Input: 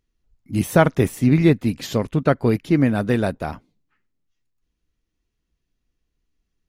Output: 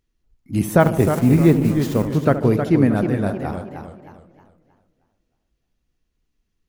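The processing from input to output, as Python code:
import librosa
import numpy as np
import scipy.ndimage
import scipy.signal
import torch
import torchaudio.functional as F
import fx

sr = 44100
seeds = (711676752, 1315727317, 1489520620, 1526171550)

y = fx.delta_hold(x, sr, step_db=-31.0, at=(0.8, 2.15))
y = fx.dynamic_eq(y, sr, hz=3600.0, q=0.74, threshold_db=-41.0, ratio=4.0, max_db=-7)
y = fx.level_steps(y, sr, step_db=12, at=(3.03, 3.44), fade=0.02)
y = fx.echo_tape(y, sr, ms=73, feedback_pct=73, wet_db=-9.5, lp_hz=1300.0, drive_db=5.0, wow_cents=9)
y = fx.echo_warbled(y, sr, ms=310, feedback_pct=37, rate_hz=2.8, cents=138, wet_db=-7.5)
y = y * 10.0 ** (1.0 / 20.0)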